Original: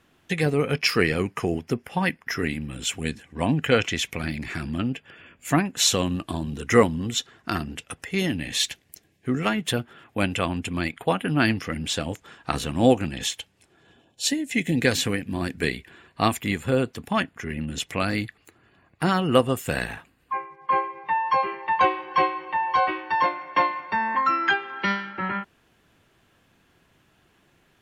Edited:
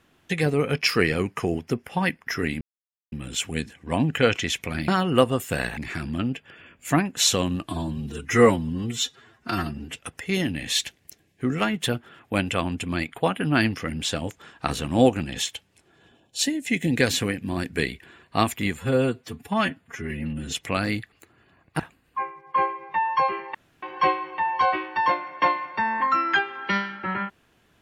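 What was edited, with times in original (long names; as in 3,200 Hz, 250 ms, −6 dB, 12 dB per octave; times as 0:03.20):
0:02.61: splice in silence 0.51 s
0:06.29–0:07.80: time-stretch 1.5×
0:16.62–0:17.80: time-stretch 1.5×
0:19.05–0:19.94: move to 0:04.37
0:21.69–0:21.97: fill with room tone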